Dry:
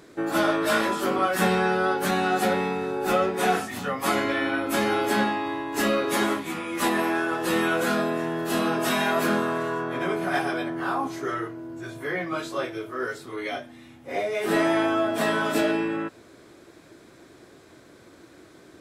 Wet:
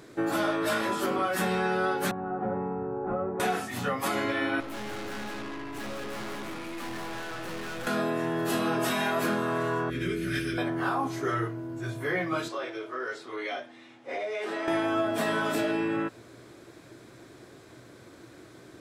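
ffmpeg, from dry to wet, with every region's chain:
ffmpeg -i in.wav -filter_complex "[0:a]asettb=1/sr,asplit=3[link_01][link_02][link_03];[link_01]atrim=end=2.114[link_04];[link_02]atrim=start=2.11:end=3.4,asetpts=PTS-STARTPTS,afade=type=in:duration=0.004:curve=qsin,afade=type=out:start_time=1.286:duration=0.004:curve=qsin,lowpass=frequency=1200:width=0.5412,lowpass=frequency=1200:width=1.3066,acrossover=split=140|3000[link_05][link_06][link_07];[link_06]acompressor=threshold=-33dB:ratio=2:attack=3.2:release=140:knee=2.83:detection=peak[link_08];[link_05][link_08][link_07]amix=inputs=3:normalize=0[link_09];[link_03]atrim=start=3.396[link_10];[link_04][link_09]acrossfade=duration=0.004:curve1=hsin:curve2=qsin[link_11];[link_11][link_10]acrossfade=duration=0.004:curve1=qsin:curve2=hsin,asettb=1/sr,asplit=3[link_12][link_13][link_14];[link_12]atrim=end=4.604[link_15];[link_13]atrim=start=4.6:end=7.87,asetpts=PTS-STARTPTS,afade=type=in:duration=0.004:curve=qsin,afade=type=out:start_time=3.266:duration=0.004:curve=qsin,aecho=1:1:186:0.473,atrim=end_sample=144207,acrossover=split=3000[link_16][link_17];[link_17]acompressor=threshold=-41dB:ratio=4:attack=1:release=60[link_18];[link_16][link_18]amix=inputs=2:normalize=0,aeval=exprs='(tanh(63.1*val(0)+0.75)-tanh(0.75))/63.1':channel_layout=same[link_19];[link_14]atrim=start=7.866[link_20];[link_15][link_19]acrossfade=duration=0.004:curve1=hsin:curve2=qsin[link_21];[link_21][link_20]acrossfade=duration=0.004:curve1=qsin:curve2=hsin,asettb=1/sr,asplit=3[link_22][link_23][link_24];[link_22]atrim=end=9.904[link_25];[link_23]atrim=start=9.9:end=10.58,asetpts=PTS-STARTPTS,afade=type=in:duration=0.004:curve=qsin,afade=type=out:start_time=0.676:duration=0.004:curve=qsin,aeval=exprs='val(0)+0.00501*(sin(2*PI*60*n/s)+sin(2*PI*2*60*n/s)/2+sin(2*PI*3*60*n/s)/3+sin(2*PI*4*60*n/s)/4+sin(2*PI*5*60*n/s)/5)':channel_layout=same,asuperstop=centerf=830:order=4:qfactor=0.55[link_26];[link_24]atrim=start=10.576[link_27];[link_25][link_26]acrossfade=duration=0.004:curve1=hsin:curve2=qsin[link_28];[link_28][link_27]acrossfade=duration=0.004:curve1=qsin:curve2=hsin,asettb=1/sr,asplit=3[link_29][link_30][link_31];[link_29]atrim=end=12.484[link_32];[link_30]atrim=start=12.48:end=14.68,asetpts=PTS-STARTPTS,afade=type=in:duration=0.004:curve=qsin,afade=type=out:start_time=2.196:duration=0.004:curve=qsin,acompressor=threshold=-28dB:ratio=5:attack=3.2:release=140:knee=1:detection=peak,highpass=360,lowpass=5900[link_33];[link_31]atrim=start=14.676[link_34];[link_32][link_33]acrossfade=duration=0.004:curve1=hsin:curve2=qsin[link_35];[link_35][link_34]acrossfade=duration=0.004:curve1=qsin:curve2=hsin,equalizer=frequency=120:width=7.5:gain=10.5,acontrast=79,alimiter=limit=-11.5dB:level=0:latency=1:release=343,volume=-7dB" out.wav

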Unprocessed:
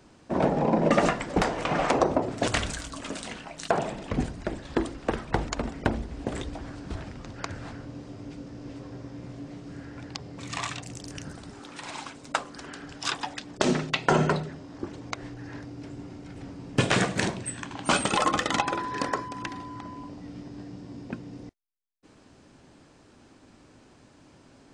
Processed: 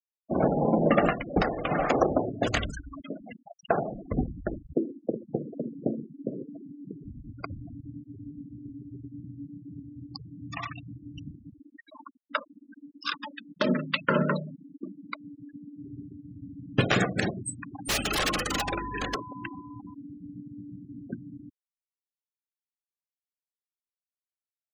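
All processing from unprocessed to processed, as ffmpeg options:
ffmpeg -i in.wav -filter_complex "[0:a]asettb=1/sr,asplit=3[link_01][link_02][link_03];[link_01]atrim=end=4.734[link_04];[link_02]atrim=start=4.73:end=7.04,asetpts=PTS-STARTPTS,afade=type=in:duration=0.004:curve=qsin,afade=type=out:start_time=2.306:duration=0.004:curve=qsin,asuperpass=centerf=290:order=8:qfactor=0.62,aecho=1:1:132:0.119,atrim=end_sample=101871[link_05];[link_03]atrim=start=7.036[link_06];[link_04][link_05]acrossfade=duration=0.004:curve1=hsin:curve2=qsin[link_07];[link_07][link_06]acrossfade=duration=0.004:curve1=qsin:curve2=hsin,asettb=1/sr,asplit=3[link_08][link_09][link_10];[link_08]atrim=end=11.804[link_11];[link_09]atrim=start=11.8:end=15.8,asetpts=PTS-STARTPTS,afade=type=in:duration=0.004:curve=qsin,afade=type=out:start_time=3.996:duration=0.004:curve=qsin,asuperstop=centerf=740:order=20:qfactor=3.2,highpass=170,equalizer=frequency=200:width_type=q:width=4:gain=8,equalizer=frequency=390:width_type=q:width=4:gain=-8,equalizer=frequency=690:width_type=q:width=4:gain=9,lowpass=frequency=5800:width=0.5412,lowpass=frequency=5800:width=1.3066,bandreject=frequency=50:width_type=h:width=6,bandreject=frequency=100:width_type=h:width=6,bandreject=frequency=150:width_type=h:width=6,bandreject=frequency=200:width_type=h:width=6,bandreject=frequency=250:width_type=h:width=6,bandreject=frequency=300:width_type=h:width=6,bandreject=frequency=350:width_type=h:width=6,bandreject=frequency=400:width_type=h:width=6,bandreject=frequency=450:width_type=h:width=6,bandreject=frequency=500:width_type=h:width=6[link_12];[link_10]atrim=start=15.796[link_13];[link_11][link_12]acrossfade=duration=0.004:curve1=hsin:curve2=qsin[link_14];[link_14][link_13]acrossfade=duration=0.004:curve1=qsin:curve2=hsin,asettb=1/sr,asplit=3[link_15][link_16][link_17];[link_15]atrim=end=17.884[link_18];[link_16]atrim=start=17.88:end=19.15,asetpts=PTS-STARTPTS,afade=type=in:duration=0.004:curve=qsin,afade=type=out:start_time=1.266:duration=0.004:curve=qsin,highshelf=frequency=3900:width_type=q:width=3:gain=-9.5,aeval=exprs='(mod(8.91*val(0)+1,2)-1)/8.91':channel_layout=same,aeval=exprs='val(0)+0.01*(sin(2*PI*50*n/s)+sin(2*PI*2*50*n/s)/2+sin(2*PI*3*50*n/s)/3+sin(2*PI*4*50*n/s)/4+sin(2*PI*5*50*n/s)/5)':channel_layout=same[link_19];[link_17]atrim=start=19.146[link_20];[link_18][link_19]acrossfade=duration=0.004:curve1=hsin:curve2=qsin[link_21];[link_21][link_20]acrossfade=duration=0.004:curve1=qsin:curve2=hsin,bandreject=frequency=950:width=6.4,afftfilt=real='re*gte(hypot(re,im),0.0447)':imag='im*gte(hypot(re,im),0.0447)':win_size=1024:overlap=0.75" out.wav

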